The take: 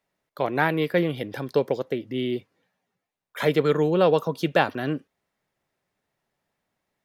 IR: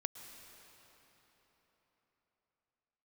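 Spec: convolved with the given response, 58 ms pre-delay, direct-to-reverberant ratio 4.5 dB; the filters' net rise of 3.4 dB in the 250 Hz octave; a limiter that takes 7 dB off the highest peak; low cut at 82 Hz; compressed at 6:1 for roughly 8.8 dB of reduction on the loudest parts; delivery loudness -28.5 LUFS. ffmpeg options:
-filter_complex "[0:a]highpass=82,equalizer=f=250:t=o:g=5,acompressor=threshold=-23dB:ratio=6,alimiter=limit=-19dB:level=0:latency=1,asplit=2[a][b];[1:a]atrim=start_sample=2205,adelay=58[c];[b][c]afir=irnorm=-1:irlink=0,volume=-3.5dB[d];[a][d]amix=inputs=2:normalize=0,volume=1dB"

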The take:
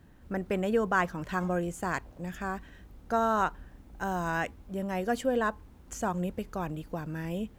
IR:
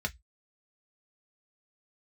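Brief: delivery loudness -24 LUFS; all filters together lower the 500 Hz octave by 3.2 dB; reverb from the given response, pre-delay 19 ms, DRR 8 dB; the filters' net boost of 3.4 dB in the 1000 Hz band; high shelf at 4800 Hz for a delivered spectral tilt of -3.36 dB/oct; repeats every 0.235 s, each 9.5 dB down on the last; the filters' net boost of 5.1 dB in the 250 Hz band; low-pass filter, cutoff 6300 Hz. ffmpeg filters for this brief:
-filter_complex "[0:a]lowpass=6.3k,equalizer=f=250:t=o:g=8.5,equalizer=f=500:t=o:g=-8.5,equalizer=f=1k:t=o:g=6,highshelf=f=4.8k:g=5,aecho=1:1:235|470|705|940:0.335|0.111|0.0365|0.012,asplit=2[a][b];[1:a]atrim=start_sample=2205,adelay=19[c];[b][c]afir=irnorm=-1:irlink=0,volume=-12.5dB[d];[a][d]amix=inputs=2:normalize=0,volume=4dB"

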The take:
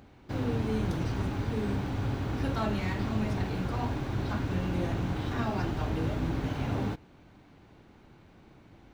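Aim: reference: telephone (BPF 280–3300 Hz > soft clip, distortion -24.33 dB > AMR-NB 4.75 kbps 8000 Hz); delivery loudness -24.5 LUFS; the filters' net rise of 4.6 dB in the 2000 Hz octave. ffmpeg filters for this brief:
-af "highpass=280,lowpass=3.3k,equalizer=f=2k:t=o:g=6.5,asoftclip=threshold=-23.5dB,volume=15.5dB" -ar 8000 -c:a libopencore_amrnb -b:a 4750

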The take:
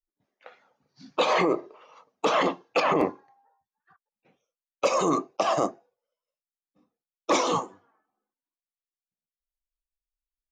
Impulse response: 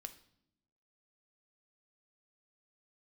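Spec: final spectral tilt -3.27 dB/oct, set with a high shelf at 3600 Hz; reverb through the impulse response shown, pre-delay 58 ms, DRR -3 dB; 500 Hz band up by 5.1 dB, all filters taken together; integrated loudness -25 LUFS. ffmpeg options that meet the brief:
-filter_complex "[0:a]equalizer=f=500:t=o:g=6,highshelf=f=3.6k:g=6.5,asplit=2[a][b];[1:a]atrim=start_sample=2205,adelay=58[c];[b][c]afir=irnorm=-1:irlink=0,volume=8dB[d];[a][d]amix=inputs=2:normalize=0,volume=-7dB"

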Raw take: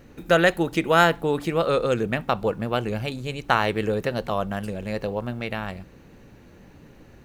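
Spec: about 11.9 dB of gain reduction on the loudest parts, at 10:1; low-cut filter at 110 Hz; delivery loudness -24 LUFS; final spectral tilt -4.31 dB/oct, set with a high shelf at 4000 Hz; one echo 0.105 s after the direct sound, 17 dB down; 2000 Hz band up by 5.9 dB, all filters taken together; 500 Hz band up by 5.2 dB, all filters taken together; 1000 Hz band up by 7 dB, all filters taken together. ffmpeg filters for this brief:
-af "highpass=110,equalizer=f=500:t=o:g=4,equalizer=f=1k:t=o:g=7,equalizer=f=2k:t=o:g=6.5,highshelf=f=4k:g=-9,acompressor=threshold=-19dB:ratio=10,aecho=1:1:105:0.141,volume=2dB"

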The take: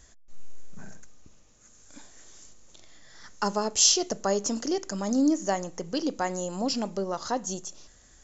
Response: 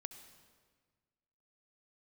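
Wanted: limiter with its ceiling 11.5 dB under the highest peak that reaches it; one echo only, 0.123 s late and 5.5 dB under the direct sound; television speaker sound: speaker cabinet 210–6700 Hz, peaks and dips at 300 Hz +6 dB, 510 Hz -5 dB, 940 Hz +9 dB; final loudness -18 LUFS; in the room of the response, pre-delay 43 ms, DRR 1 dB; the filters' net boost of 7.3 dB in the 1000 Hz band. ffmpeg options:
-filter_complex "[0:a]equalizer=f=1k:t=o:g=3.5,alimiter=limit=-19dB:level=0:latency=1,aecho=1:1:123:0.531,asplit=2[a][b];[1:a]atrim=start_sample=2205,adelay=43[c];[b][c]afir=irnorm=-1:irlink=0,volume=3dB[d];[a][d]amix=inputs=2:normalize=0,highpass=f=210:w=0.5412,highpass=f=210:w=1.3066,equalizer=f=300:t=q:w=4:g=6,equalizer=f=510:t=q:w=4:g=-5,equalizer=f=940:t=q:w=4:g=9,lowpass=f=6.7k:w=0.5412,lowpass=f=6.7k:w=1.3066,volume=7dB"

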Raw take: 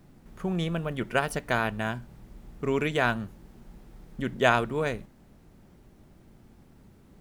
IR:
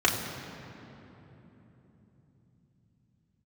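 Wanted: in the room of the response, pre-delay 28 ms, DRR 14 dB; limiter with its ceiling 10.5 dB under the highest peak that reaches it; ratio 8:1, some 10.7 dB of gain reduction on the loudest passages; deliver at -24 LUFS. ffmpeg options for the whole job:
-filter_complex "[0:a]acompressor=threshold=-27dB:ratio=8,alimiter=level_in=3dB:limit=-24dB:level=0:latency=1,volume=-3dB,asplit=2[a][b];[1:a]atrim=start_sample=2205,adelay=28[c];[b][c]afir=irnorm=-1:irlink=0,volume=-29dB[d];[a][d]amix=inputs=2:normalize=0,volume=15dB"

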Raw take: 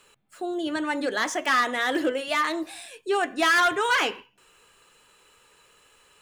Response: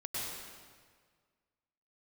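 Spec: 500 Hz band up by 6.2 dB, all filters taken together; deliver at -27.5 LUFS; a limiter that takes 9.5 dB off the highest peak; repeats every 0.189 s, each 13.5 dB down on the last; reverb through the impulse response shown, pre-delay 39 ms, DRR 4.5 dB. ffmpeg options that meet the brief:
-filter_complex "[0:a]equalizer=f=500:t=o:g=8,alimiter=limit=-18.5dB:level=0:latency=1,aecho=1:1:189|378:0.211|0.0444,asplit=2[a][b];[1:a]atrim=start_sample=2205,adelay=39[c];[b][c]afir=irnorm=-1:irlink=0,volume=-7.5dB[d];[a][d]amix=inputs=2:normalize=0,volume=-2dB"

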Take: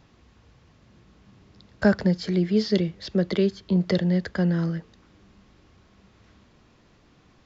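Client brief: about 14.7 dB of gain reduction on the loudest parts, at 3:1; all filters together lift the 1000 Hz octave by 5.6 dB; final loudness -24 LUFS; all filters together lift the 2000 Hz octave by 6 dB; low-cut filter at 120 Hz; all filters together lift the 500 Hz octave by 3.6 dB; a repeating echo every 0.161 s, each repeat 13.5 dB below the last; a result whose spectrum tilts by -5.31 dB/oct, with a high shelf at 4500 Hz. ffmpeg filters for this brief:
-af "highpass=120,equalizer=f=500:t=o:g=3.5,equalizer=f=1k:t=o:g=5,equalizer=f=2k:t=o:g=5,highshelf=f=4.5k:g=3.5,acompressor=threshold=-31dB:ratio=3,aecho=1:1:161|322:0.211|0.0444,volume=8.5dB"

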